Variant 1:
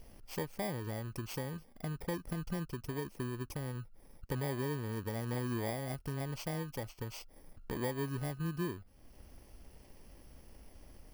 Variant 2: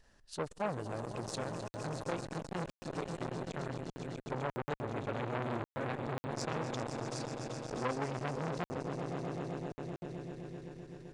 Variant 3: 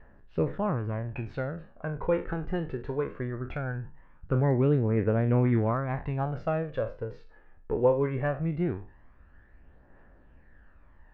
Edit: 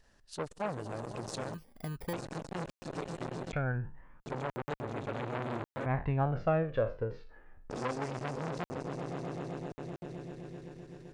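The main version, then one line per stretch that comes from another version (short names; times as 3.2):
2
1.54–2.13 from 1
3.53–4.2 from 3
5.86–7.7 from 3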